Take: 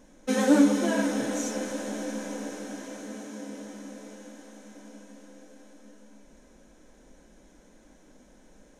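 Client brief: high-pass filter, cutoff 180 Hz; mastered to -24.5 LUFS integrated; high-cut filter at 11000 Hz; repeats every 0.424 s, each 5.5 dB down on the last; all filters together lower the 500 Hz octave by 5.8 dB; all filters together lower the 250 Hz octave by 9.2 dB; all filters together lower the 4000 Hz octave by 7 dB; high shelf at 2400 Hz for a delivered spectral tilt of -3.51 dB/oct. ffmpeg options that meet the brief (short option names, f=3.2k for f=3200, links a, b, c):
-af "highpass=180,lowpass=11k,equalizer=f=250:t=o:g=-8.5,equalizer=f=500:t=o:g=-4.5,highshelf=f=2.4k:g=-3.5,equalizer=f=4k:t=o:g=-6,aecho=1:1:424|848|1272|1696|2120|2544|2968:0.531|0.281|0.149|0.079|0.0419|0.0222|0.0118,volume=9.5dB"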